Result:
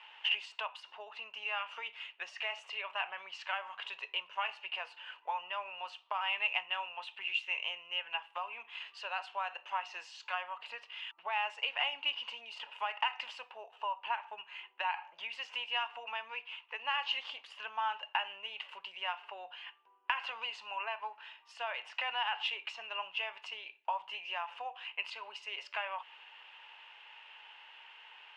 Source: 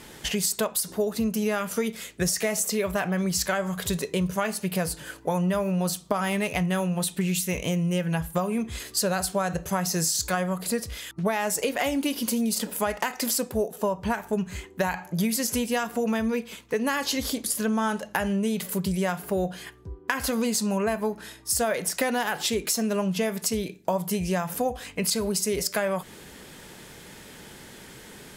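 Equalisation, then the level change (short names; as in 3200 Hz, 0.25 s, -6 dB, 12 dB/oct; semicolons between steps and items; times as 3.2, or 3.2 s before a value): ladder high-pass 820 Hz, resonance 65%; synth low-pass 2800 Hz, resonance Q 13; air absorption 62 m; -4.0 dB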